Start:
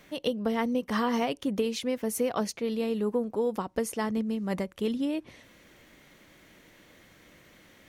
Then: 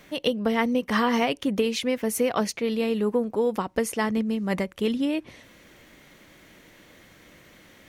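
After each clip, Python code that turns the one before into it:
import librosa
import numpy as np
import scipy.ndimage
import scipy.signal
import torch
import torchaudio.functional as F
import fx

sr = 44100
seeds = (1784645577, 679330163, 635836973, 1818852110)

y = fx.dynamic_eq(x, sr, hz=2200.0, q=1.2, threshold_db=-48.0, ratio=4.0, max_db=5)
y = F.gain(torch.from_numpy(y), 4.0).numpy()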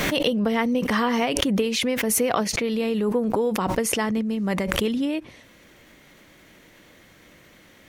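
y = fx.pre_swell(x, sr, db_per_s=20.0)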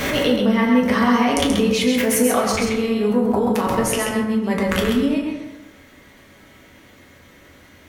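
y = x + 10.0 ** (-5.0 / 20.0) * np.pad(x, (int(132 * sr / 1000.0), 0))[:len(x)]
y = fx.rev_fdn(y, sr, rt60_s=1.1, lf_ratio=1.05, hf_ratio=0.5, size_ms=72.0, drr_db=-2.0)
y = F.gain(torch.from_numpy(y), -1.0).numpy()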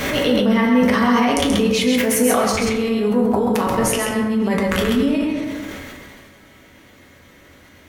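y = fx.sustainer(x, sr, db_per_s=25.0)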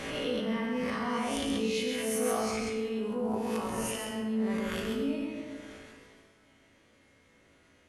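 y = fx.spec_swells(x, sr, rise_s=0.68)
y = fx.brickwall_lowpass(y, sr, high_hz=12000.0)
y = fx.comb_fb(y, sr, f0_hz=55.0, decay_s=0.68, harmonics='all', damping=0.0, mix_pct=80)
y = F.gain(torch.from_numpy(y), -9.0).numpy()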